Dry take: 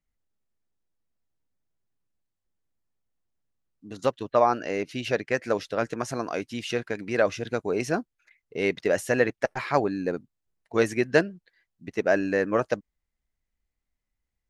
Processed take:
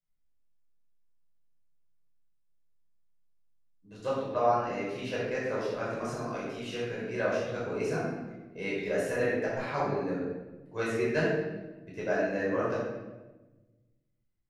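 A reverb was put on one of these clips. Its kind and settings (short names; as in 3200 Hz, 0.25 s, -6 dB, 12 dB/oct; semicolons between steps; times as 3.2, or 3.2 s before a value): shoebox room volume 690 m³, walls mixed, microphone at 5.2 m; gain -16.5 dB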